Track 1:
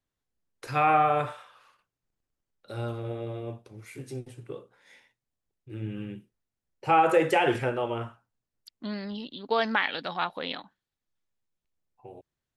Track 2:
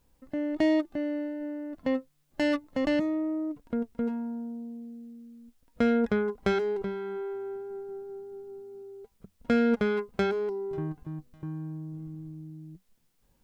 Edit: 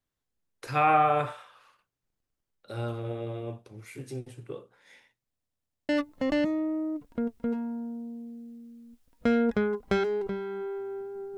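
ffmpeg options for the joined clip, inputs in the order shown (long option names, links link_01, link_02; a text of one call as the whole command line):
ffmpeg -i cue0.wav -i cue1.wav -filter_complex "[0:a]apad=whole_dur=11.37,atrim=end=11.37,asplit=6[link_01][link_02][link_03][link_04][link_05][link_06];[link_01]atrim=end=5.392[link_07];[link_02]atrim=start=5.288:end=5.392[link_08];[link_03]atrim=start=5.288:end=5.392[link_09];[link_04]atrim=start=5.288:end=5.392[link_10];[link_05]atrim=start=5.288:end=5.392[link_11];[link_06]atrim=start=5.288:end=5.392[link_12];[1:a]atrim=start=2.438:end=7.92[link_13];[link_07][link_08]acrossfade=duration=0.004:curve1=hsin:curve2=hsin[link_14];[link_14][link_09]acrossfade=duration=0.004:curve1=hsin:curve2=hsin[link_15];[link_15][link_10]acrossfade=duration=0.004:curve1=hsin:curve2=hsin[link_16];[link_16][link_11]acrossfade=duration=0.004:curve1=hsin:curve2=hsin[link_17];[link_17][link_12]acrossfade=duration=0.004:curve1=hsin:curve2=hsin[link_18];[link_18][link_13]acrossfade=duration=0.004:curve1=hsin:curve2=hsin" out.wav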